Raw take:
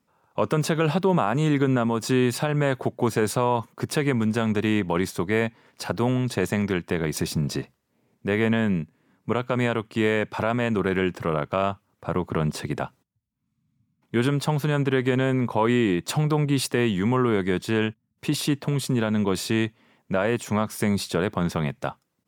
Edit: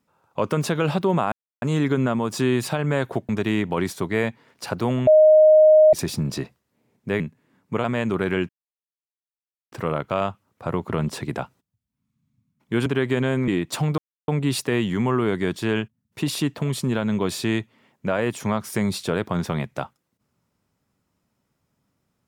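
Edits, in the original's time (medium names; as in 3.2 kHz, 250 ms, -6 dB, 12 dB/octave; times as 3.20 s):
1.32 s: insert silence 0.30 s
2.99–4.47 s: delete
6.25–7.11 s: bleep 620 Hz -9 dBFS
8.38–8.76 s: delete
9.40–10.49 s: delete
11.14 s: insert silence 1.23 s
14.28–14.82 s: delete
15.44–15.84 s: delete
16.34 s: insert silence 0.30 s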